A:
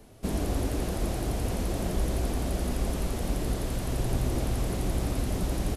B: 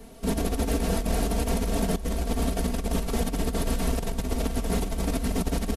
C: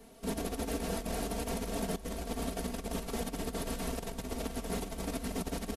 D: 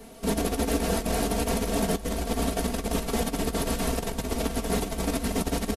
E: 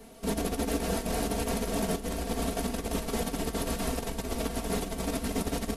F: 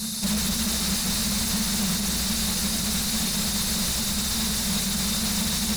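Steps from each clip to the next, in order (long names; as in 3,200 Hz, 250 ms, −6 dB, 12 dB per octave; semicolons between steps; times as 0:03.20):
comb filter 4.4 ms, depth 82%; compressor whose output falls as the input rises −27 dBFS, ratio −0.5; level +2 dB
low-shelf EQ 140 Hz −8.5 dB; level −6.5 dB
double-tracking delay 14 ms −13 dB; level +9 dB
echo with a time of its own for lows and highs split 310 Hz, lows 210 ms, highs 725 ms, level −12 dB; level −4 dB
brick-wall band-stop 230–3,500 Hz; mid-hump overdrive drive 39 dB, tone 4,800 Hz, clips at −20.5 dBFS; level +4.5 dB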